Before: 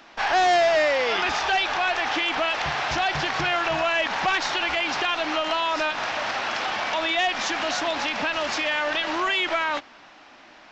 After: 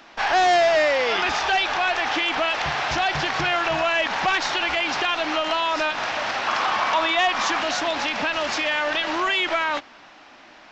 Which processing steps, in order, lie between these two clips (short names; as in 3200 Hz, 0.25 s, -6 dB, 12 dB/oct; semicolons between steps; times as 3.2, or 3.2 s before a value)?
6.47–7.6 bell 1100 Hz +9 dB 0.54 oct; gain +1.5 dB